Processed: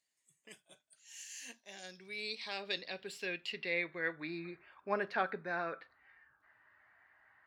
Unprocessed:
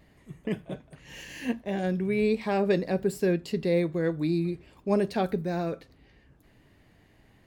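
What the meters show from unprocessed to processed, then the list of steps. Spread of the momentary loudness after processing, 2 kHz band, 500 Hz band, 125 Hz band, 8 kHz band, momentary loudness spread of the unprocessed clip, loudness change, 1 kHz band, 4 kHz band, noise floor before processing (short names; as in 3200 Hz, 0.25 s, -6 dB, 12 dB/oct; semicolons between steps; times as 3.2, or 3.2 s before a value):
14 LU, 0.0 dB, -15.0 dB, -23.5 dB, -2.0 dB, 14 LU, -11.0 dB, -6.0 dB, +0.5 dB, -61 dBFS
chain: band-pass sweep 7600 Hz -> 1500 Hz, 1.25–4.61; spectral noise reduction 10 dB; gain +6 dB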